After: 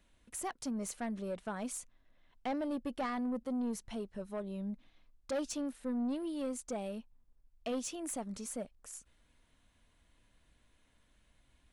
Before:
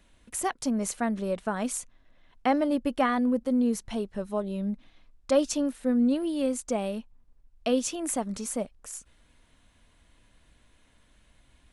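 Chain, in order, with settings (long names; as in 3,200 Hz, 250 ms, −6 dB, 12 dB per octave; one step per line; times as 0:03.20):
soft clipping −22.5 dBFS, distortion −13 dB
level −8 dB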